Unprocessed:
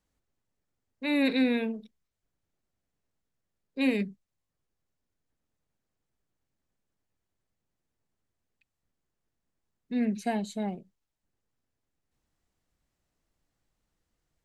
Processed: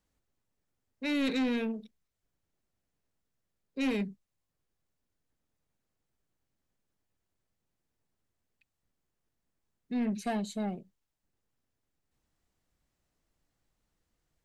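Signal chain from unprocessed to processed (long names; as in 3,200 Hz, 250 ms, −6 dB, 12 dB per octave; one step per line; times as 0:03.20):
soft clipping −25.5 dBFS, distortion −12 dB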